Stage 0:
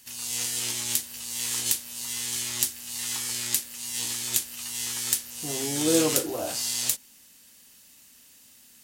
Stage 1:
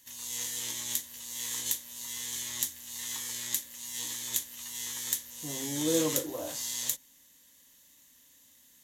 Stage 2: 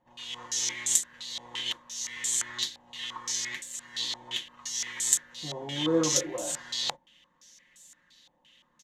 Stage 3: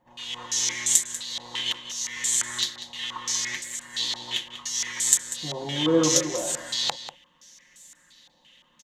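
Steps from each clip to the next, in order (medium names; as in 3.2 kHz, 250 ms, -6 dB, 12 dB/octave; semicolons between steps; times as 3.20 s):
rippled EQ curve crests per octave 1.1, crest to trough 8 dB; trim -7 dB
comb 5.6 ms; step-sequenced low-pass 5.8 Hz 810–8000 Hz
echo from a far wall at 33 m, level -11 dB; trim +4.5 dB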